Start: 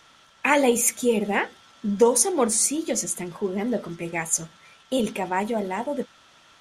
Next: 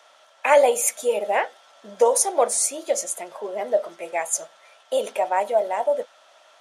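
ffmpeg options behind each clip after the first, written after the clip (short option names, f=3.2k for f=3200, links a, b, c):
-af "highpass=f=620:t=q:w=4.9,equalizer=f=9.3k:w=1.5:g=2.5,volume=-2.5dB"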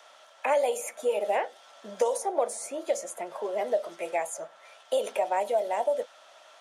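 -filter_complex "[0:a]acrossover=split=340|810|2200[a][b][c][d];[a]acompressor=threshold=-45dB:ratio=4[e];[b]acompressor=threshold=-25dB:ratio=4[f];[c]acompressor=threshold=-39dB:ratio=4[g];[d]acompressor=threshold=-40dB:ratio=4[h];[e][f][g][h]amix=inputs=4:normalize=0"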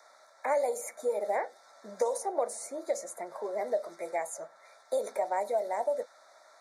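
-af "asuperstop=centerf=2900:order=12:qfactor=2.2,volume=-3.5dB"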